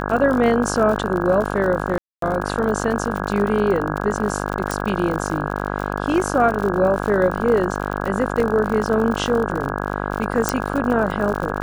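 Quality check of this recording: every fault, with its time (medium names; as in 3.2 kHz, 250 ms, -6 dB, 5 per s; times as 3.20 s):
buzz 50 Hz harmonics 33 -25 dBFS
crackle 57 per s -25 dBFS
1.98–2.22 s: dropout 243 ms
4.71 s: pop
8.40 s: dropout 3.4 ms
10.49 s: pop -1 dBFS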